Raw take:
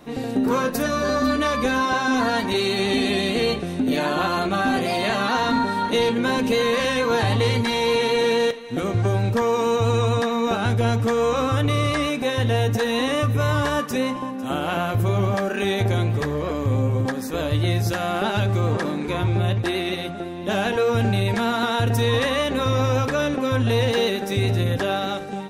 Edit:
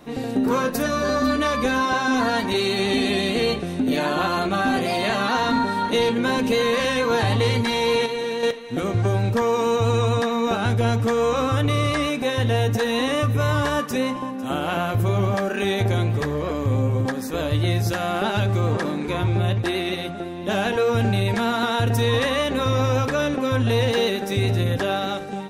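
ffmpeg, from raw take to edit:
-filter_complex "[0:a]asplit=3[s0][s1][s2];[s0]atrim=end=8.062[s3];[s1]atrim=start=8.058:end=8.432,asetpts=PTS-STARTPTS,volume=0.473[s4];[s2]atrim=start=8.428[s5];[s3][s4]acrossfade=d=0.004:c1=hsin:c2=hsin[s6];[s6][s5]acrossfade=d=0.004:c1=hsin:c2=hsin"

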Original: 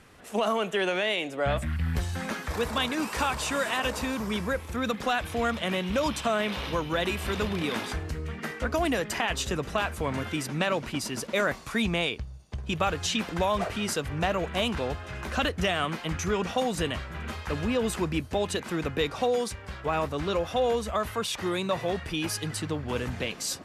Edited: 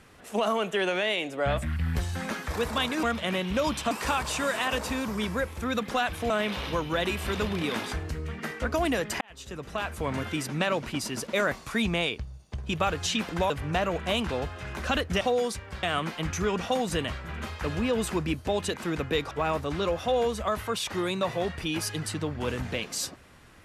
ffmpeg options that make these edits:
-filter_complex "[0:a]asplit=9[s0][s1][s2][s3][s4][s5][s6][s7][s8];[s0]atrim=end=3.032[s9];[s1]atrim=start=5.418:end=6.302[s10];[s2]atrim=start=3.028:end=5.422[s11];[s3]atrim=start=6.298:end=9.21,asetpts=PTS-STARTPTS,afade=t=out:st=2.908:d=0.004:c=hsin[s12];[s4]atrim=start=9.21:end=13.502,asetpts=PTS-STARTPTS,afade=t=in:d=0.92[s13];[s5]atrim=start=13.978:end=15.692[s14];[s6]atrim=start=19.168:end=19.792[s15];[s7]atrim=start=15.688:end=19.172[s16];[s8]atrim=start=19.788[s17];[s9][s10]acrossfade=d=0.004:c1=hsin:c2=hsin[s18];[s18][s11]acrossfade=d=0.004:c1=hsin:c2=hsin[s19];[s12][s13]concat=n=2:v=0:a=1[s20];[s19][s20]acrossfade=d=0.004:c1=hsin:c2=hsin[s21];[s21][s14]acrossfade=d=0.004:c1=hsin:c2=hsin[s22];[s22][s15]acrossfade=d=0.004:c1=hsin:c2=hsin[s23];[s23][s16]acrossfade=d=0.004:c1=hsin:c2=hsin[s24];[s24][s17]acrossfade=d=0.004:c1=hsin:c2=hsin"

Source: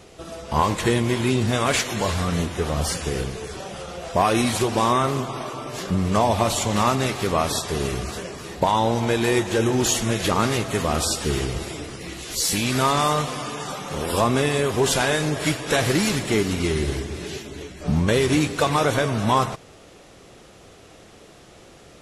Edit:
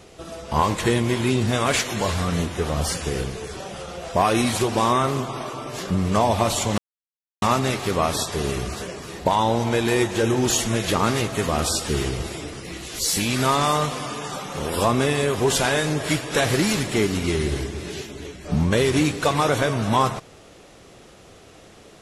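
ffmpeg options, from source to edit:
-filter_complex "[0:a]asplit=2[s0][s1];[s0]atrim=end=6.78,asetpts=PTS-STARTPTS,afade=t=out:st=6.776:d=0.004:c=hsin,apad=pad_dur=0.64[s2];[s1]atrim=start=6.78,asetpts=PTS-STARTPTS,afade=t=in:d=0.004:c=hsin[s3];[s2][s3]concat=n=2:v=0:a=1"

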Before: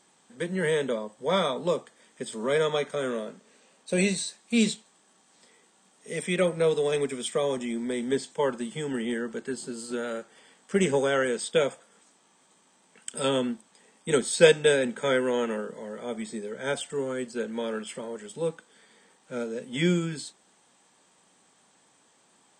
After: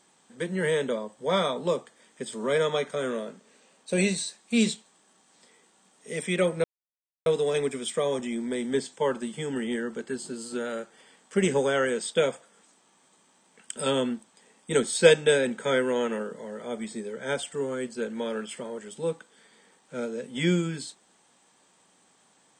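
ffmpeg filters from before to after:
-filter_complex "[0:a]asplit=2[s0][s1];[s0]atrim=end=6.64,asetpts=PTS-STARTPTS,afade=t=out:st=6.636:d=0.004:c=hsin,apad=pad_dur=0.62[s2];[s1]atrim=start=6.64,asetpts=PTS-STARTPTS,afade=t=in:d=0.004:c=hsin[s3];[s2][s3]concat=n=2:v=0:a=1"

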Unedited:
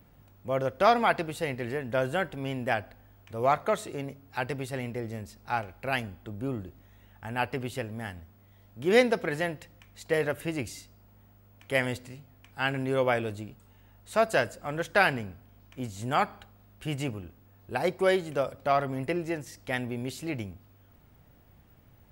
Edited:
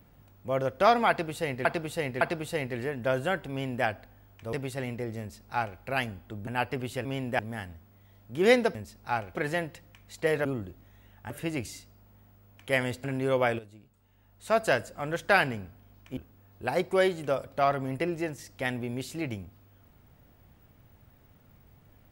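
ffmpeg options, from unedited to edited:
-filter_complex "[0:a]asplit=14[s0][s1][s2][s3][s4][s5][s6][s7][s8][s9][s10][s11][s12][s13];[s0]atrim=end=1.652[s14];[s1]atrim=start=1.088:end=1.652[s15];[s2]atrim=start=1.088:end=3.412[s16];[s3]atrim=start=4.488:end=6.432[s17];[s4]atrim=start=7.278:end=7.862[s18];[s5]atrim=start=2.388:end=2.732[s19];[s6]atrim=start=7.858:end=9.222[s20];[s7]atrim=start=5.158:end=5.762[s21];[s8]atrim=start=9.218:end=10.322[s22];[s9]atrim=start=6.428:end=7.282[s23];[s10]atrim=start=10.318:end=12.062[s24];[s11]atrim=start=12.698:end=13.25,asetpts=PTS-STARTPTS,afade=t=out:st=0.548:d=0.004:c=hsin:silence=0.199526[s25];[s12]atrim=start=13.25:end=15.832,asetpts=PTS-STARTPTS,afade=t=in:d=1.02:c=qua:silence=0.199526[s26];[s13]atrim=start=17.248[s27];[s14][s15]acrossfade=d=0.004:c1=hsin:c2=hsin[s28];[s28][s16]acrossfade=d=0.004:c1=hsin:c2=hsin[s29];[s29][s17]acrossfade=d=0.004:c1=hsin:c2=hsin[s30];[s30][s18]acrossfade=d=0.004:c1=hsin:c2=hsin[s31];[s31][s19]acrossfade=d=0.004:c1=hsin:c2=hsin[s32];[s32][s20]acrossfade=d=0.004:c1=hsin:c2=hsin[s33];[s33][s21]acrossfade=d=0.004:c1=hsin:c2=hsin[s34];[s34][s22]acrossfade=d=0.004:c1=hsin:c2=hsin[s35];[s35][s23]acrossfade=d=0.004:c1=hsin:c2=hsin[s36];[s36][s24]acrossfade=d=0.004:c1=hsin:c2=hsin[s37];[s25][s26]concat=n=2:v=0:a=1[s38];[s37][s38]acrossfade=d=0.004:c1=hsin:c2=hsin[s39];[s39][s27]acrossfade=d=0.004:c1=hsin:c2=hsin"

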